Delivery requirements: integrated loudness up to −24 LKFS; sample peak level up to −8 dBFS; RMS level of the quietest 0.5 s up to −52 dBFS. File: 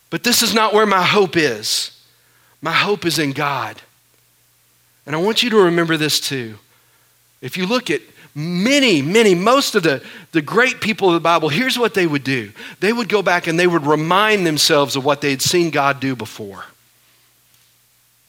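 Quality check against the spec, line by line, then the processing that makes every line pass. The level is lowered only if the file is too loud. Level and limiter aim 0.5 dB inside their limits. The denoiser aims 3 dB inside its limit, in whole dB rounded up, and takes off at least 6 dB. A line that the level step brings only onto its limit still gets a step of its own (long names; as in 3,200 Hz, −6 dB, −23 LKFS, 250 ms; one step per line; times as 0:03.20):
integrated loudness −16.0 LKFS: out of spec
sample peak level −1.5 dBFS: out of spec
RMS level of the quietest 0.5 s −57 dBFS: in spec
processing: level −8.5 dB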